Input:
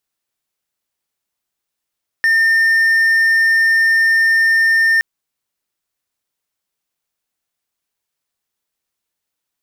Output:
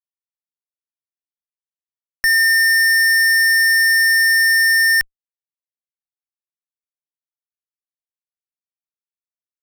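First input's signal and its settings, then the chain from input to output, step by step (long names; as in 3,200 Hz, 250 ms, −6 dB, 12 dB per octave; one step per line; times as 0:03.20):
tone triangle 1,810 Hz −8 dBFS 2.77 s
fuzz pedal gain 45 dB, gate −44 dBFS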